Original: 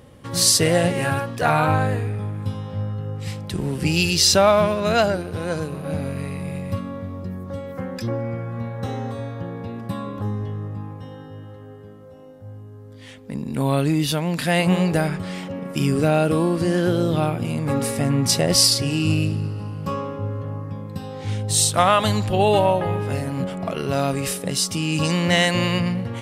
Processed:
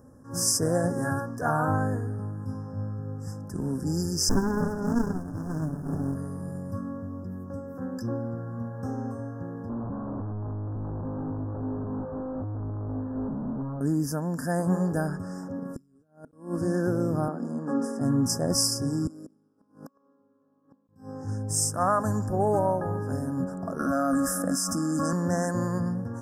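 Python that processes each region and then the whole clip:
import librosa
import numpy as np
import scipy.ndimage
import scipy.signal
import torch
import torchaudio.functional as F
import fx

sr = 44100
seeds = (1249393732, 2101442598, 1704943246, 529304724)

y = fx.chain(x, sr, fx.high_shelf(hz=6300.0, db=6.0),
    fx.comb(ms=7.0, depth=0.79),
    fx.running_max(window=65), at=(4.29, 6.15))
y = fx.chain(y, sr, fx.clip_1bit(),
    fx.lowpass(hz=1100.0, slope=24),
    fx.low_shelf(hz=200.0, db=4.5), at=(9.69, 13.81))
y = fx.chain(y, sr, fx.over_compress(threshold_db=-21.0, ratio=-0.5),
    fx.gate_flip(shuts_db=-16.0, range_db=-37), at=(15.76, 16.33))
y = fx.chain(y, sr, fx.steep_highpass(hz=170.0, slope=48),
    fx.air_absorb(metres=74.0), at=(17.28, 18.01))
y = fx.chain(y, sr, fx.highpass(hz=210.0, slope=24),
    fx.over_compress(threshold_db=-30.0, ratio=-0.5),
    fx.gate_flip(shuts_db=-26.0, range_db=-30), at=(19.07, 20.89))
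y = fx.chain(y, sr, fx.peak_eq(hz=1200.0, db=8.5, octaves=1.2),
    fx.fixed_phaser(hz=620.0, stages=8),
    fx.env_flatten(amount_pct=70), at=(23.79, 25.13))
y = scipy.signal.sosfilt(scipy.signal.cheby1(5, 1.0, [1700.0, 5100.0], 'bandstop', fs=sr, output='sos'), y)
y = fx.peak_eq(y, sr, hz=260.0, db=9.0, octaves=0.27)
y = fx.attack_slew(y, sr, db_per_s=160.0)
y = y * librosa.db_to_amplitude(-6.5)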